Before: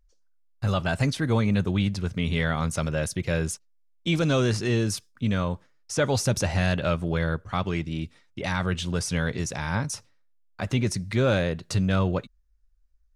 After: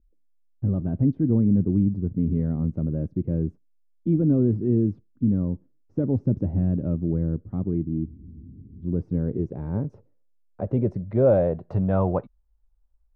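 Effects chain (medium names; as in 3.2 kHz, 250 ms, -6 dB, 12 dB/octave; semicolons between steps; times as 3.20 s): low-pass sweep 290 Hz -> 860 Hz, 8.71–12.31 s; spectral freeze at 8.08 s, 0.75 s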